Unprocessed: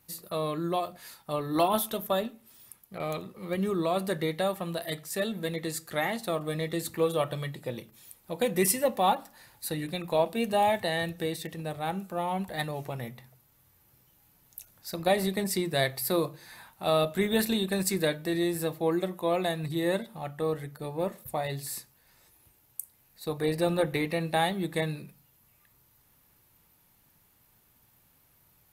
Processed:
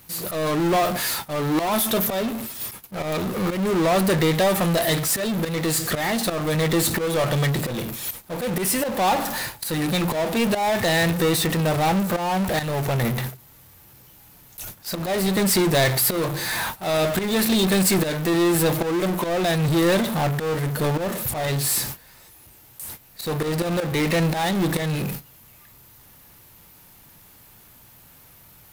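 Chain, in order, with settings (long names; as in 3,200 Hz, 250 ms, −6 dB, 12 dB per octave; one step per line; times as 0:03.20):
noise gate −52 dBFS, range −55 dB
volume swells 492 ms
power curve on the samples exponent 0.35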